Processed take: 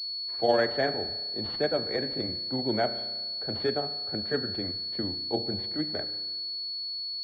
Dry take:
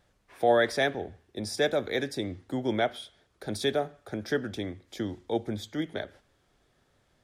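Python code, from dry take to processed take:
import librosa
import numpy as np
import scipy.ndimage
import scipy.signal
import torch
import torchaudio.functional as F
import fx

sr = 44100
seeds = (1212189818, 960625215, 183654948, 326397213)

y = fx.granulator(x, sr, seeds[0], grain_ms=100.0, per_s=20.0, spray_ms=14.0, spread_st=0)
y = fx.rev_spring(y, sr, rt60_s=1.4, pass_ms=(33,), chirp_ms=55, drr_db=12.0)
y = fx.pwm(y, sr, carrier_hz=4400.0)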